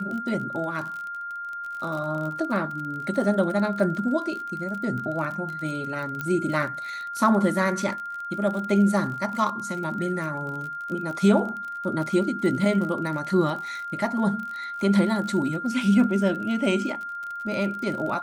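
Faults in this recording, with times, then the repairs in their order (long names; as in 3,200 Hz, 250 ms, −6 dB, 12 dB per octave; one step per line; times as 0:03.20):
surface crackle 43 per second −32 dBFS
whistle 1,400 Hz −31 dBFS
0:06.21: click −16 dBFS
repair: click removal
notch filter 1,400 Hz, Q 30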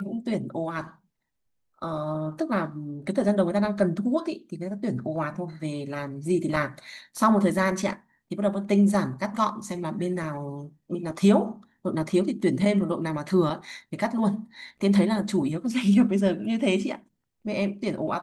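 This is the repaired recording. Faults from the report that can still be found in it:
none of them is left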